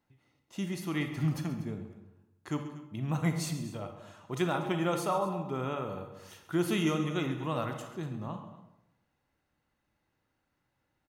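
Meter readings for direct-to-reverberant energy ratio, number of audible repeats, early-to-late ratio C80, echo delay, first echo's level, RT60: 5.0 dB, 2, 8.5 dB, 134 ms, -15.0 dB, 0.90 s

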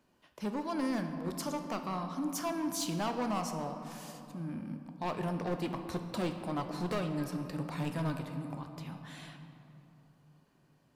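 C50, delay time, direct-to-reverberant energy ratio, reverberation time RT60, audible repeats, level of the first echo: 7.0 dB, no echo, 5.5 dB, 2.8 s, no echo, no echo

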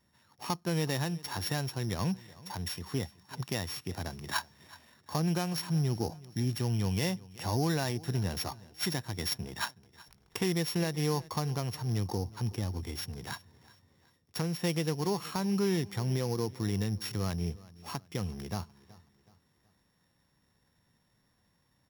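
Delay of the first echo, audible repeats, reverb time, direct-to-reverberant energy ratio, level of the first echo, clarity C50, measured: 373 ms, 2, no reverb, no reverb, -21.0 dB, no reverb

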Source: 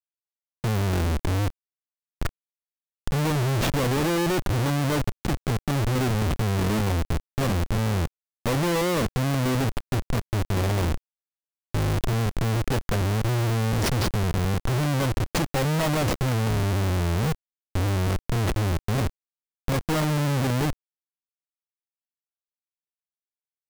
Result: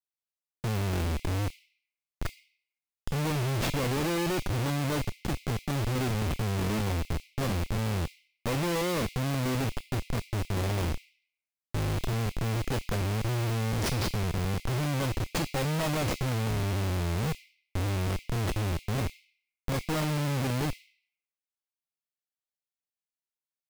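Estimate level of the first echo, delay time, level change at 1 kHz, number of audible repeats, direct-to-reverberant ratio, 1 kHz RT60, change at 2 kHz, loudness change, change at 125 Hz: no echo, no echo, -5.5 dB, no echo, 4.0 dB, 0.80 s, -4.5 dB, -5.5 dB, -5.5 dB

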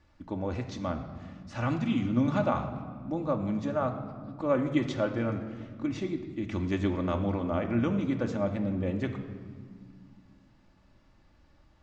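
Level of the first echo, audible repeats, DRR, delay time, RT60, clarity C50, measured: no echo, no echo, 3.0 dB, no echo, 1.9 s, 8.5 dB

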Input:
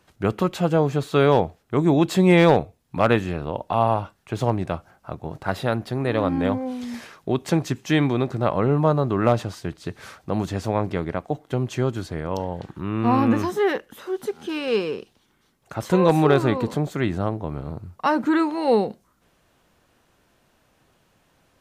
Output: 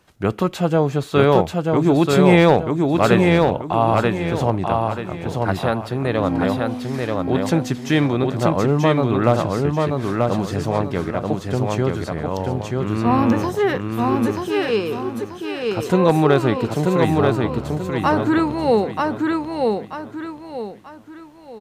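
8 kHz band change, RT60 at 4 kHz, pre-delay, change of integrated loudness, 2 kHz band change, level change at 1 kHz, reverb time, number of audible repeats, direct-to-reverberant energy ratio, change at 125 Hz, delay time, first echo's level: +4.0 dB, no reverb, no reverb, +3.5 dB, +4.0 dB, +4.0 dB, no reverb, 4, no reverb, +4.0 dB, 935 ms, -3.0 dB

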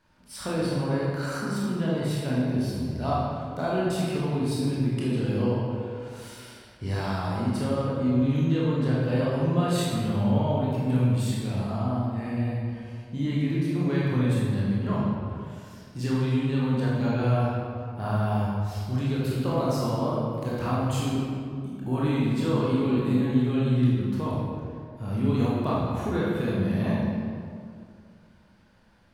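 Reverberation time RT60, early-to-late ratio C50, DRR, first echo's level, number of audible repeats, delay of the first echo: 2.3 s, -2.5 dB, -6.5 dB, no echo, no echo, no echo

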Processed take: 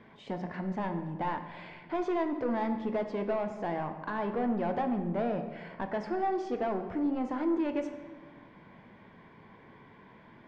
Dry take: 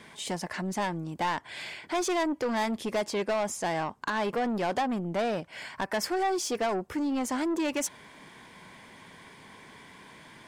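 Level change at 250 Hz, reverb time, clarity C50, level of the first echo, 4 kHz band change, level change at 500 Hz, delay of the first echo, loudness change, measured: -0.5 dB, 1.5 s, 8.5 dB, no echo, -16.0 dB, -2.0 dB, no echo, -2.5 dB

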